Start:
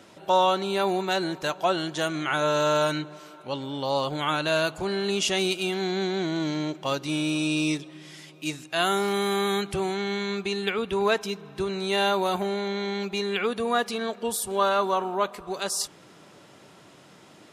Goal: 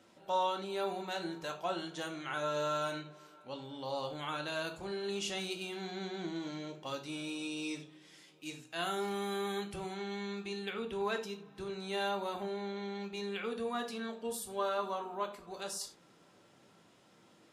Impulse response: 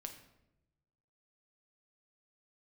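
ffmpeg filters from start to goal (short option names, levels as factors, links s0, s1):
-filter_complex "[0:a]asettb=1/sr,asplit=3[s0][s1][s2];[s0]atrim=end=12.094[s3];[s1]atrim=start=12.09:end=13.14,asetpts=PTS-STARTPTS,afade=t=in:d=0.004:c=qsin,afade=t=out:st=1.046:d=0.004:c=qsin,highshelf=f=5800:g=-4.5[s4];[s2]atrim=start=13.136[s5];[s3][s4]acrossfade=d=0.004:c1=hsin:c2=qsin[s6];[s6][s5]acrossfade=d=0.004:c1=qsin:c2=hsin[s7];[1:a]atrim=start_sample=2205,afade=t=out:st=0.22:d=0.01,atrim=end_sample=10143,asetrate=70560,aresample=44100[s8];[s7][s8]afir=irnorm=-1:irlink=0,volume=0.631"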